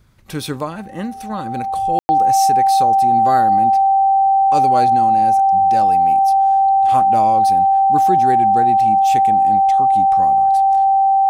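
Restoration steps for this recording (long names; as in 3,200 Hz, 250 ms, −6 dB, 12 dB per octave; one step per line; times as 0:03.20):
notch filter 780 Hz, Q 30
ambience match 0:01.99–0:02.09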